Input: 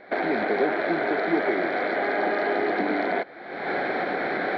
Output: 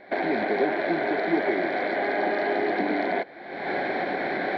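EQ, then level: peaking EQ 1.3 kHz -10 dB 0.26 oct; band-stop 470 Hz, Q 12; 0.0 dB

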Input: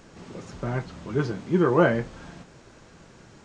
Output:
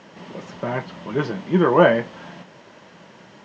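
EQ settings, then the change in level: cabinet simulation 160–6300 Hz, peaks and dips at 190 Hz +6 dB, 590 Hz +7 dB, 950 Hz +8 dB, 1.9 kHz +7 dB, 3 kHz +8 dB; +2.0 dB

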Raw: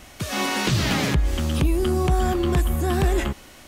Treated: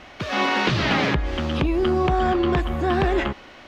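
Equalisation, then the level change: distance through air 240 m; bass shelf 220 Hz -12 dB; +6.5 dB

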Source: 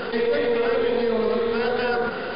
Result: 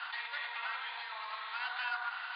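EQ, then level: steep high-pass 860 Hz 48 dB/octave; Chebyshev low-pass 4.3 kHz, order 5; -6.5 dB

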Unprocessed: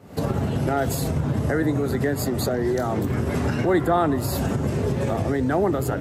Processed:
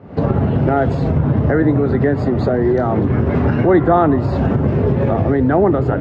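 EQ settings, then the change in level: distance through air 180 m; treble shelf 3.2 kHz -10.5 dB; treble shelf 7.2 kHz -11.5 dB; +8.5 dB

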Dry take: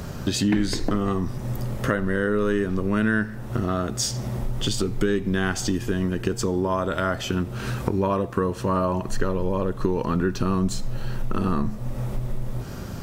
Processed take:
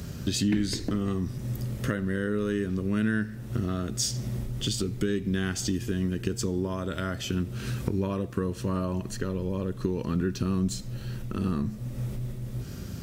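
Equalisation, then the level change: high-pass 41 Hz; peaking EQ 870 Hz -12 dB 1.7 oct; -2.0 dB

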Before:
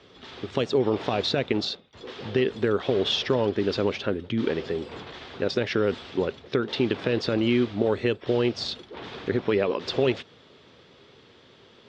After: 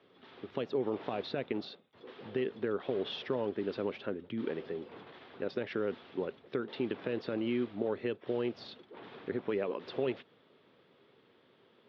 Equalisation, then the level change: high-pass 160 Hz 12 dB/octave; distance through air 280 m; -9.0 dB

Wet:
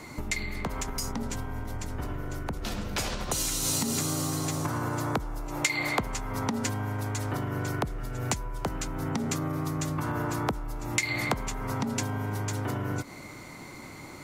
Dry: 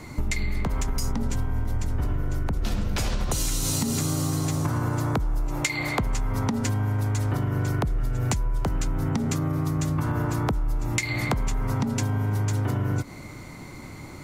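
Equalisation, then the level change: bass shelf 170 Hz -11.5 dB; 0.0 dB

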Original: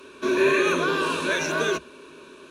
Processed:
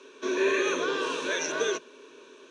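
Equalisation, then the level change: cabinet simulation 270–8600 Hz, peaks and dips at 270 Hz +4 dB, 460 Hz +9 dB, 880 Hz +3 dB, 1.9 kHz +5 dB, 3.3 kHz +6 dB, 6 kHz +10 dB; -8.0 dB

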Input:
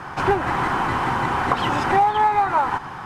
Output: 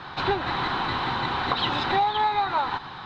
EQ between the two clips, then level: resonant low-pass 3.9 kHz, resonance Q 11; -6.0 dB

